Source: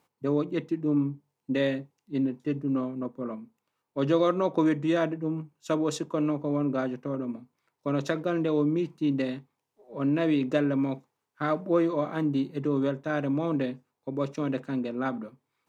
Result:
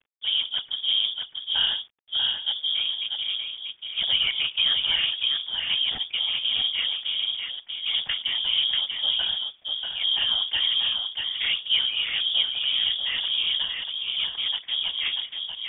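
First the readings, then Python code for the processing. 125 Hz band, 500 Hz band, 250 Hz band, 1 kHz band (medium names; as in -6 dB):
under -20 dB, under -20 dB, under -30 dB, -9.0 dB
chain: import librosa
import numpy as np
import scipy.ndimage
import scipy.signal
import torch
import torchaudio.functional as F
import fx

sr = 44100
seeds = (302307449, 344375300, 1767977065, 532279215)

p1 = fx.cvsd(x, sr, bps=32000)
p2 = fx.level_steps(p1, sr, step_db=20)
p3 = p1 + (p2 * 10.0 ** (0.0 / 20.0))
p4 = fx.whisperise(p3, sr, seeds[0])
p5 = fx.quant_dither(p4, sr, seeds[1], bits=10, dither='none')
p6 = p5 + fx.echo_single(p5, sr, ms=639, db=-4.5, dry=0)
p7 = fx.freq_invert(p6, sr, carrier_hz=3500)
y = p7 * 10.0 ** (-1.0 / 20.0)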